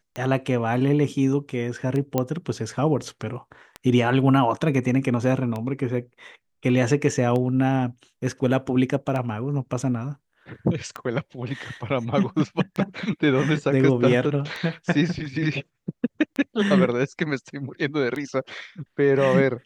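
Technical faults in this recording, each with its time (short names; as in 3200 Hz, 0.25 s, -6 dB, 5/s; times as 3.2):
tick 33 1/3 rpm -17 dBFS
2.18 pop -9 dBFS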